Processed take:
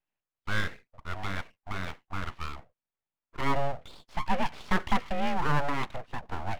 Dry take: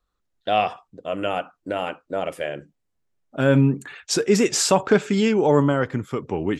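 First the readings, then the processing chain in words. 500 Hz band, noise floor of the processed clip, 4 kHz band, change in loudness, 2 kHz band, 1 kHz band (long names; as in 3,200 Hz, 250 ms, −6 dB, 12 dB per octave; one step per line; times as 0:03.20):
−17.0 dB, below −85 dBFS, −11.0 dB, −11.5 dB, −4.5 dB, −5.5 dB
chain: single-sideband voice off tune +75 Hz 160–2,600 Hz
full-wave rectification
level −6 dB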